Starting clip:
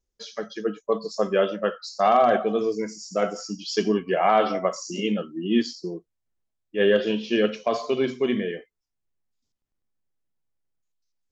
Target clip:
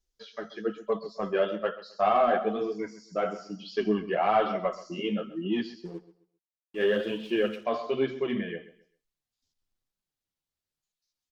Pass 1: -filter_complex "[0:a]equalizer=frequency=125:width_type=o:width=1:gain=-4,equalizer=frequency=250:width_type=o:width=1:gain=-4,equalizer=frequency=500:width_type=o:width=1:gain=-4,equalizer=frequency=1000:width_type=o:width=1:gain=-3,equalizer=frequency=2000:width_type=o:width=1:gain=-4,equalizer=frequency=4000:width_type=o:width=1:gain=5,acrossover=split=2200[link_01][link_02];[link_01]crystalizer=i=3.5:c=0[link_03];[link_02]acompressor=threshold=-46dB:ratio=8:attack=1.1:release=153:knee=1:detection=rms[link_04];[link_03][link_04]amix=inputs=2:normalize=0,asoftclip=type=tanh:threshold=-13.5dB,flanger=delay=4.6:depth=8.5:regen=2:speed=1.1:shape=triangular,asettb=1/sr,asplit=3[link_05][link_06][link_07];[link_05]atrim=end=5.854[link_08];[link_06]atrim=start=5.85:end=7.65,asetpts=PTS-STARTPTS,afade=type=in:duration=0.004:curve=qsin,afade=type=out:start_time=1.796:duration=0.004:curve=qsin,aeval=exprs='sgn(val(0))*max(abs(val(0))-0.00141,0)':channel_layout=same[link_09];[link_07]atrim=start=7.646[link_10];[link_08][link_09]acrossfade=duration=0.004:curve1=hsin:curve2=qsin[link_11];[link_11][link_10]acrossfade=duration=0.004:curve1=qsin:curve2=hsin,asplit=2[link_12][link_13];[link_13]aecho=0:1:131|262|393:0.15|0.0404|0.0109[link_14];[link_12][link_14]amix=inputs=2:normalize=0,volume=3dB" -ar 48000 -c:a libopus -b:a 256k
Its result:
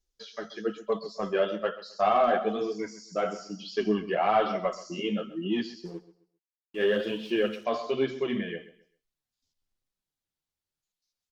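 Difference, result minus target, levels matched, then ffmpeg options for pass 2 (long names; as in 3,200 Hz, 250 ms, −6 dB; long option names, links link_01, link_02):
downward compressor: peak gain reduction −10 dB
-filter_complex "[0:a]equalizer=frequency=125:width_type=o:width=1:gain=-4,equalizer=frequency=250:width_type=o:width=1:gain=-4,equalizer=frequency=500:width_type=o:width=1:gain=-4,equalizer=frequency=1000:width_type=o:width=1:gain=-3,equalizer=frequency=2000:width_type=o:width=1:gain=-4,equalizer=frequency=4000:width_type=o:width=1:gain=5,acrossover=split=2200[link_01][link_02];[link_01]crystalizer=i=3.5:c=0[link_03];[link_02]acompressor=threshold=-57.5dB:ratio=8:attack=1.1:release=153:knee=1:detection=rms[link_04];[link_03][link_04]amix=inputs=2:normalize=0,asoftclip=type=tanh:threshold=-13.5dB,flanger=delay=4.6:depth=8.5:regen=2:speed=1.1:shape=triangular,asettb=1/sr,asplit=3[link_05][link_06][link_07];[link_05]atrim=end=5.854[link_08];[link_06]atrim=start=5.85:end=7.65,asetpts=PTS-STARTPTS,afade=type=in:duration=0.004:curve=qsin,afade=type=out:start_time=1.796:duration=0.004:curve=qsin,aeval=exprs='sgn(val(0))*max(abs(val(0))-0.00141,0)':channel_layout=same[link_09];[link_07]atrim=start=7.646[link_10];[link_08][link_09]acrossfade=duration=0.004:curve1=hsin:curve2=qsin[link_11];[link_11][link_10]acrossfade=duration=0.004:curve1=qsin:curve2=hsin,asplit=2[link_12][link_13];[link_13]aecho=0:1:131|262|393:0.15|0.0404|0.0109[link_14];[link_12][link_14]amix=inputs=2:normalize=0,volume=3dB" -ar 48000 -c:a libopus -b:a 256k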